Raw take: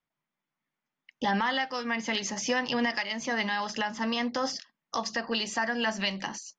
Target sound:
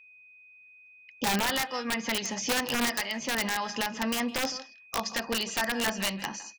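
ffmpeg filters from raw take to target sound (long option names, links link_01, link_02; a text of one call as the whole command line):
ffmpeg -i in.wav -filter_complex "[0:a]asplit=2[link_01][link_02];[link_02]adelay=160,highpass=300,lowpass=3400,asoftclip=type=hard:threshold=-25dB,volume=-14dB[link_03];[link_01][link_03]amix=inputs=2:normalize=0,aeval=exprs='(mod(10*val(0)+1,2)-1)/10':channel_layout=same,aeval=exprs='val(0)+0.00251*sin(2*PI*2500*n/s)':channel_layout=same" out.wav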